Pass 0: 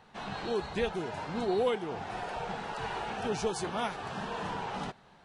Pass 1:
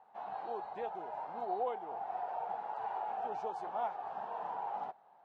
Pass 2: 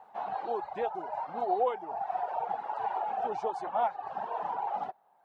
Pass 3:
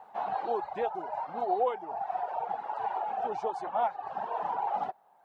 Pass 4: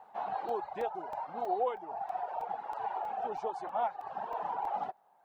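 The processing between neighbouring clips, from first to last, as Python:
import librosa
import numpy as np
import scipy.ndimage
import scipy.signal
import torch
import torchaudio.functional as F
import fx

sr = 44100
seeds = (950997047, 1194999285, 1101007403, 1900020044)

y1 = fx.bandpass_q(x, sr, hz=780.0, q=4.1)
y1 = y1 * librosa.db_to_amplitude(2.5)
y2 = fx.dereverb_blind(y1, sr, rt60_s=1.2)
y2 = y2 * librosa.db_to_amplitude(8.5)
y3 = fx.rider(y2, sr, range_db=5, speed_s=2.0)
y4 = fx.buffer_crackle(y3, sr, first_s=0.49, period_s=0.32, block=128, kind='zero')
y4 = y4 * librosa.db_to_amplitude(-3.5)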